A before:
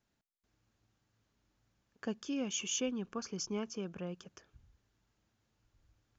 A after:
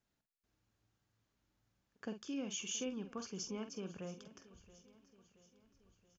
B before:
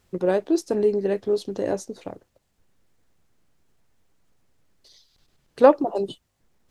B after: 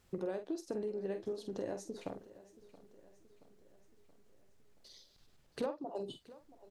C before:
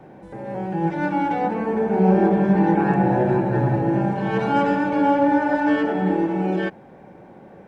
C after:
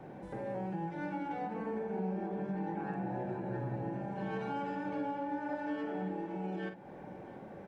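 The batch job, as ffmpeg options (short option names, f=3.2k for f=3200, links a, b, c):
-filter_complex "[0:a]acompressor=threshold=-32dB:ratio=6,asplit=2[a][b];[b]adelay=47,volume=-8.5dB[c];[a][c]amix=inputs=2:normalize=0,aecho=1:1:676|1352|2028|2704|3380:0.112|0.0617|0.0339|0.0187|0.0103,volume=-4.5dB"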